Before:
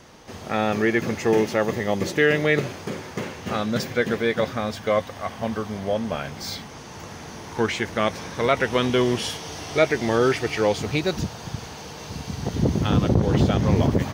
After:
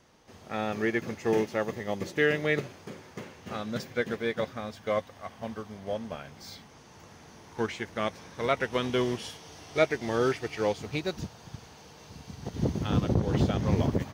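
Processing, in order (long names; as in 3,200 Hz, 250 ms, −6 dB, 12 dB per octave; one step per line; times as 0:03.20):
expander for the loud parts 1.5 to 1, over −31 dBFS
level −4.5 dB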